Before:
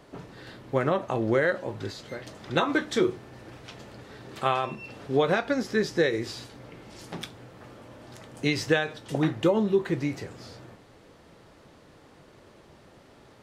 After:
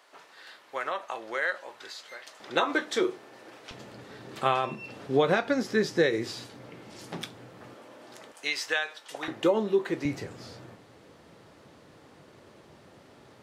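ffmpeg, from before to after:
-af "asetnsamples=n=441:p=0,asendcmd='2.4 highpass f 370;3.71 highpass f 120;7.74 highpass f 300;8.32 highpass f 890;9.28 highpass f 290;10.05 highpass f 83',highpass=940"

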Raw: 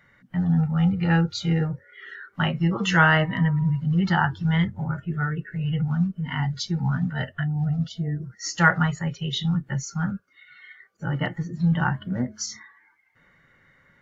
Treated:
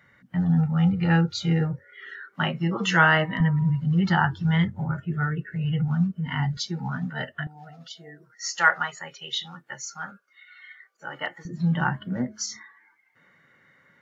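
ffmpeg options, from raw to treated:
-af "asetnsamples=n=441:p=0,asendcmd='2.06 highpass f 180;3.4 highpass f 59;6.57 highpass f 210;7.47 highpass f 610;11.45 highpass f 150',highpass=57"

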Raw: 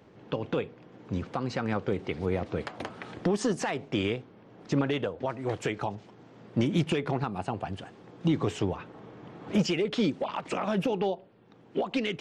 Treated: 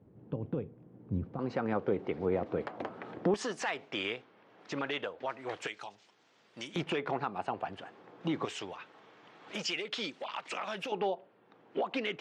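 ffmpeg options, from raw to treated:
-af "asetnsamples=n=441:p=0,asendcmd='1.39 bandpass f 540;3.34 bandpass f 2100;5.67 bandpass f 6200;6.76 bandpass f 1200;8.45 bandpass f 3400;10.92 bandpass f 1200',bandpass=f=100:t=q:w=0.51:csg=0"

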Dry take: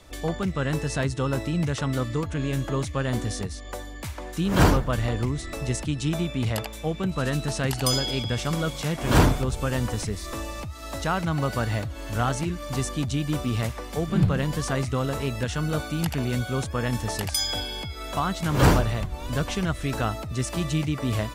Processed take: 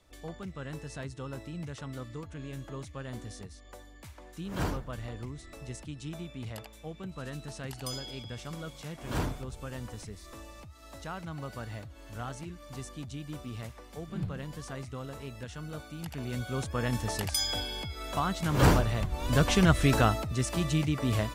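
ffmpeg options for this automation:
-af "volume=1.78,afade=t=in:st=16.03:d=0.8:silence=0.316228,afade=t=in:st=18.9:d=0.88:silence=0.354813,afade=t=out:st=19.78:d=0.57:silence=0.421697"

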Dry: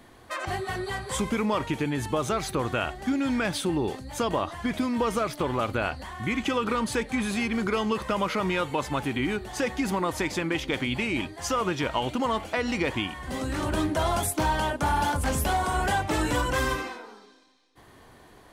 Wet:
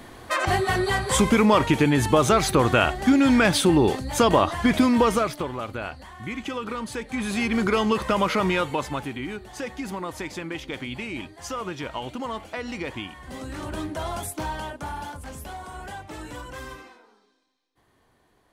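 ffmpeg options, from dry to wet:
-af "volume=7.5,afade=t=out:st=4.88:d=0.63:silence=0.223872,afade=t=in:st=7.02:d=0.56:silence=0.354813,afade=t=out:st=8.43:d=0.74:silence=0.334965,afade=t=out:st=14.41:d=0.83:silence=0.446684"

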